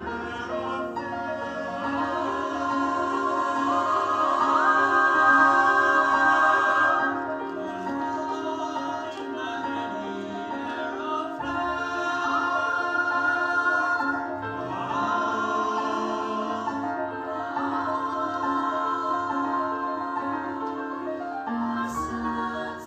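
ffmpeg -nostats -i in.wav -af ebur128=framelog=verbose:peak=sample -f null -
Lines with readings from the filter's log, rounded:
Integrated loudness:
  I:         -25.2 LUFS
  Threshold: -35.2 LUFS
Loudness range:
  LRA:        10.2 LU
  Threshold: -44.8 LUFS
  LRA low:   -30.1 LUFS
  LRA high:  -19.9 LUFS
Sample peak:
  Peak:       -7.6 dBFS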